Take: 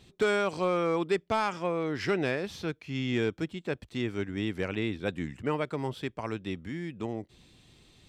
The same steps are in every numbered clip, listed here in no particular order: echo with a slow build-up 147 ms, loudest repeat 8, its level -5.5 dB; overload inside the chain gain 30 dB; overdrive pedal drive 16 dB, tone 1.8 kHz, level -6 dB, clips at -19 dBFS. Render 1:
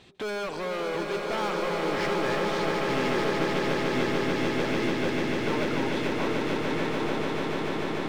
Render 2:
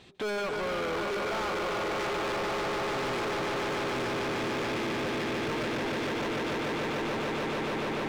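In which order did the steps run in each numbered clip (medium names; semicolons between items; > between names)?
overdrive pedal > overload inside the chain > echo with a slow build-up; echo with a slow build-up > overdrive pedal > overload inside the chain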